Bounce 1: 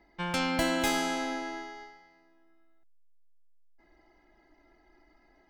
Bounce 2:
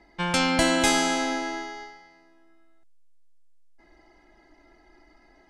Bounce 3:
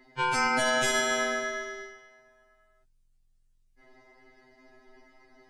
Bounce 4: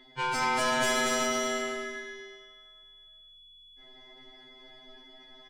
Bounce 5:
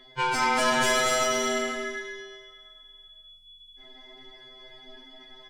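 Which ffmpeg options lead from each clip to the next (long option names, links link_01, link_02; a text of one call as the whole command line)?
ffmpeg -i in.wav -af "lowpass=frequency=9900:width=0.5412,lowpass=frequency=9900:width=1.3066,highshelf=frequency=6100:gain=7.5,volume=6dB" out.wav
ffmpeg -i in.wav -af "alimiter=limit=-15.5dB:level=0:latency=1:release=82,aeval=exprs='val(0)*sin(2*PI*23*n/s)':channel_layout=same,afftfilt=real='re*2.45*eq(mod(b,6),0)':imag='im*2.45*eq(mod(b,6),0)':win_size=2048:overlap=0.75,volume=5dB" out.wav
ffmpeg -i in.wav -filter_complex "[0:a]asoftclip=type=tanh:threshold=-24.5dB,aeval=exprs='val(0)+0.00141*sin(2*PI*3400*n/s)':channel_layout=same,asplit=2[link_01][link_02];[link_02]aecho=0:1:230|379.5|476.7|539.8|580.9:0.631|0.398|0.251|0.158|0.1[link_03];[link_01][link_03]amix=inputs=2:normalize=0" out.wav
ffmpeg -i in.wav -af "flanger=delay=1.7:depth=4.6:regen=-38:speed=0.44:shape=sinusoidal,volume=7.5dB" out.wav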